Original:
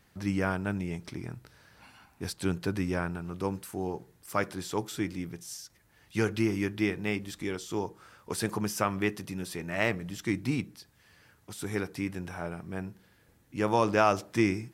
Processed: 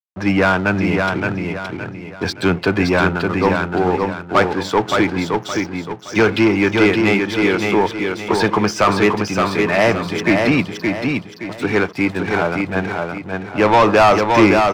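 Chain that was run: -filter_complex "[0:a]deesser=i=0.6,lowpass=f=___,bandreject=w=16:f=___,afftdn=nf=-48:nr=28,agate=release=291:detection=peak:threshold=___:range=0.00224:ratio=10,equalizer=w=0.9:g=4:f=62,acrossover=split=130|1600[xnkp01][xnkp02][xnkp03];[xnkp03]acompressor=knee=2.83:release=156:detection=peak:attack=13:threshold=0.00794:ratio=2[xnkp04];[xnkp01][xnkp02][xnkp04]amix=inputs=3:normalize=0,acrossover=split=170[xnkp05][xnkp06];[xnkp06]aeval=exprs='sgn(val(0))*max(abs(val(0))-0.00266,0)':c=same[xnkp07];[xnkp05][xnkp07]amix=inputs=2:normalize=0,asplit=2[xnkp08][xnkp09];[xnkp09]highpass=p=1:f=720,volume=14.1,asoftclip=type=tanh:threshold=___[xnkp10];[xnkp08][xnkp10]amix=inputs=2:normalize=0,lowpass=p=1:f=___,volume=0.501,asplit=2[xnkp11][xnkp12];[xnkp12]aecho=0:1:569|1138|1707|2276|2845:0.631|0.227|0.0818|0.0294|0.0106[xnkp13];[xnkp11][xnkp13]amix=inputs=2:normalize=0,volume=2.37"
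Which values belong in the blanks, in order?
5800, 1900, 0.00251, 0.299, 3800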